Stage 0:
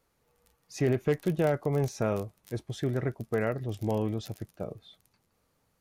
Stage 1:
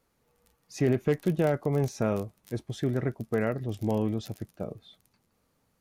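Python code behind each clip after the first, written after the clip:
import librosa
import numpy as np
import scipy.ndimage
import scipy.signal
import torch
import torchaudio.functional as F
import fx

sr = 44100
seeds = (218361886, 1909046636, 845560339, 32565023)

y = fx.peak_eq(x, sr, hz=230.0, db=4.0, octaves=0.88)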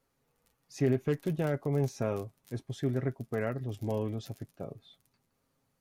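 y = x + 0.43 * np.pad(x, (int(7.4 * sr / 1000.0), 0))[:len(x)]
y = F.gain(torch.from_numpy(y), -5.0).numpy()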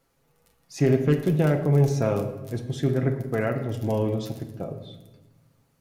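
y = fx.room_shoebox(x, sr, seeds[0], volume_m3=650.0, walls='mixed', distance_m=0.73)
y = F.gain(torch.from_numpy(y), 7.0).numpy()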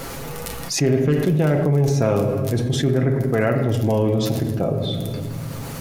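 y = fx.env_flatten(x, sr, amount_pct=70)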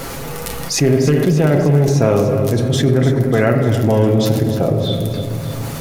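y = fx.echo_feedback(x, sr, ms=296, feedback_pct=55, wet_db=-11)
y = F.gain(torch.from_numpy(y), 4.5).numpy()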